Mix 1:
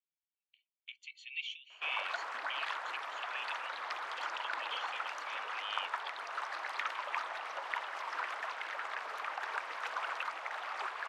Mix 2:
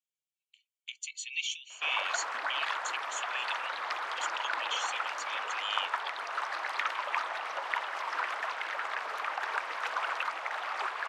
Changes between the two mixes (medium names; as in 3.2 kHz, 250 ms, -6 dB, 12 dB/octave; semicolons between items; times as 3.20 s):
speech: remove distance through air 350 m; background +5.0 dB